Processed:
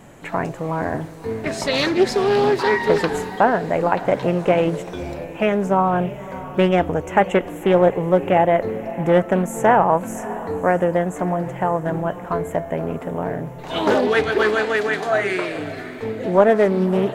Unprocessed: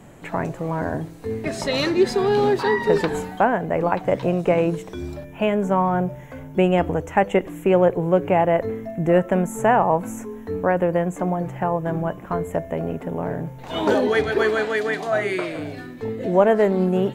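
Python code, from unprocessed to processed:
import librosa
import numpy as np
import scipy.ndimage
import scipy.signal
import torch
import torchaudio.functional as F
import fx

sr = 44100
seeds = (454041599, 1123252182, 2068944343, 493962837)

p1 = fx.low_shelf(x, sr, hz=400.0, db=-4.5)
p2 = fx.wow_flutter(p1, sr, seeds[0], rate_hz=2.1, depth_cents=25.0)
p3 = p2 + fx.echo_diffused(p2, sr, ms=591, feedback_pct=43, wet_db=-15.5, dry=0)
p4 = fx.doppler_dist(p3, sr, depth_ms=0.26)
y = F.gain(torch.from_numpy(p4), 3.5).numpy()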